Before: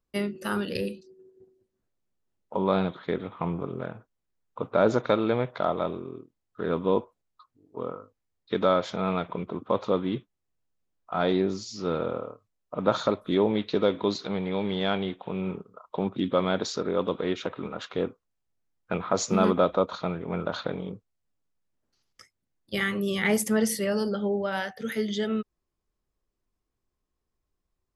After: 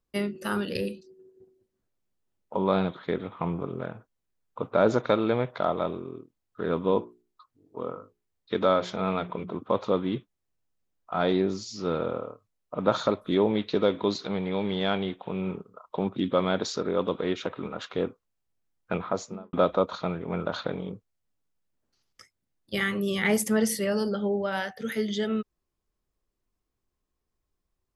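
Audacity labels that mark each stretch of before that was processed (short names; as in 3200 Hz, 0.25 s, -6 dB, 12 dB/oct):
6.910000	9.530000	notches 60/120/180/240/300/360/420 Hz
18.920000	19.530000	studio fade out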